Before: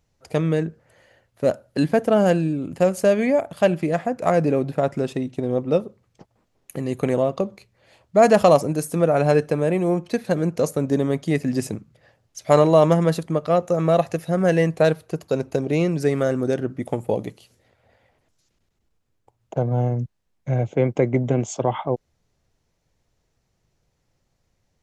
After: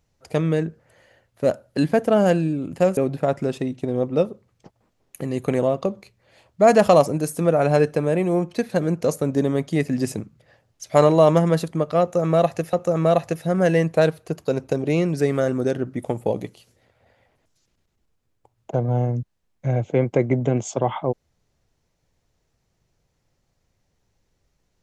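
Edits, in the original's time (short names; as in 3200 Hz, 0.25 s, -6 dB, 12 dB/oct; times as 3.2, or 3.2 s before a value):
2.97–4.52 cut
13.56–14.28 loop, 2 plays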